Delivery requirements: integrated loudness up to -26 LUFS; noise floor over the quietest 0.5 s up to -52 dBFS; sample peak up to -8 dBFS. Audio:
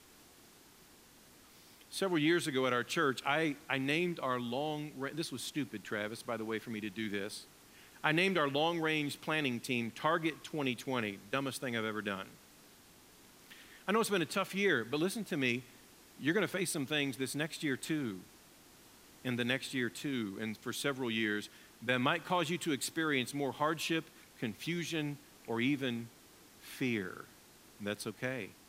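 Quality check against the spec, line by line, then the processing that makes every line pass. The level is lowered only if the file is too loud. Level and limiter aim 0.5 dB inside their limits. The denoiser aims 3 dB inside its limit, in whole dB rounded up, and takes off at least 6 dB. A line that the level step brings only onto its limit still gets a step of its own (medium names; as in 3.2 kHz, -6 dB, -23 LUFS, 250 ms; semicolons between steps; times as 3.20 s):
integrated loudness -35.0 LUFS: pass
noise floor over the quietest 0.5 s -60 dBFS: pass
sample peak -15.0 dBFS: pass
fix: none needed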